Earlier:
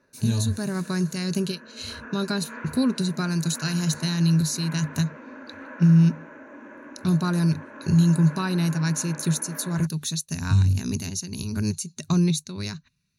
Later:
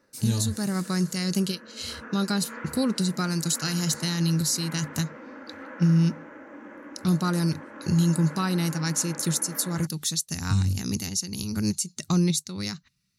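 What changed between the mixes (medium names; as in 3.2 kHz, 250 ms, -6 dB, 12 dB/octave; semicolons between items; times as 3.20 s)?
speech: add tone controls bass -2 dB, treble +5 dB; master: remove rippled EQ curve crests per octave 1.5, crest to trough 7 dB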